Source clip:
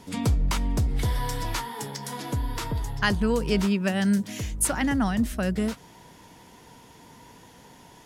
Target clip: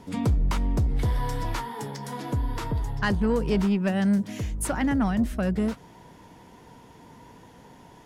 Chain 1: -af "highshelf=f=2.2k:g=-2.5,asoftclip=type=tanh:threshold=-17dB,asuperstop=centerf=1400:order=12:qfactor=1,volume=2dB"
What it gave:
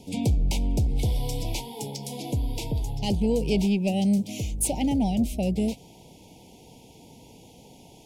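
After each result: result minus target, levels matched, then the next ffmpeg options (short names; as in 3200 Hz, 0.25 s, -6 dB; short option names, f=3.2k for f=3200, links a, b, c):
4000 Hz band +4.5 dB; 1000 Hz band -4.5 dB
-af "highshelf=f=2.2k:g=-9.5,asoftclip=type=tanh:threshold=-17dB,asuperstop=centerf=1400:order=12:qfactor=1,volume=2dB"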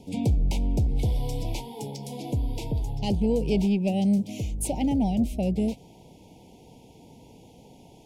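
1000 Hz band -4.5 dB
-af "highshelf=f=2.2k:g=-9.5,asoftclip=type=tanh:threshold=-17dB,volume=2dB"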